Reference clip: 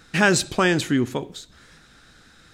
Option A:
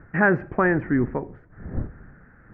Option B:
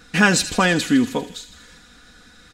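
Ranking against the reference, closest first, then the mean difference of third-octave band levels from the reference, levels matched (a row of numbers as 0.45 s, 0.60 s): B, A; 2.5 dB, 9.5 dB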